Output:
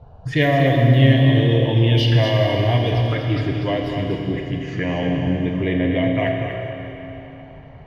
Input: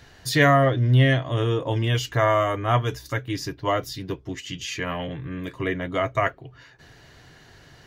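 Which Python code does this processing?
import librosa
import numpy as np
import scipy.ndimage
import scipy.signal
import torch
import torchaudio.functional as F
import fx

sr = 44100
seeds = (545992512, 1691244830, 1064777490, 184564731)

p1 = fx.env_lowpass(x, sr, base_hz=710.0, full_db=-16.5)
p2 = fx.over_compress(p1, sr, threshold_db=-31.0, ratio=-1.0)
p3 = p1 + F.gain(torch.from_numpy(p2), -3.0).numpy()
p4 = fx.env_phaser(p3, sr, low_hz=280.0, high_hz=1300.0, full_db=-20.5)
p5 = p4 + 10.0 ** (-7.0 / 20.0) * np.pad(p4, (int(242 * sr / 1000.0), 0))[:len(p4)]
p6 = fx.rev_schroeder(p5, sr, rt60_s=3.5, comb_ms=26, drr_db=2.0)
y = F.gain(torch.from_numpy(p6), 2.0).numpy()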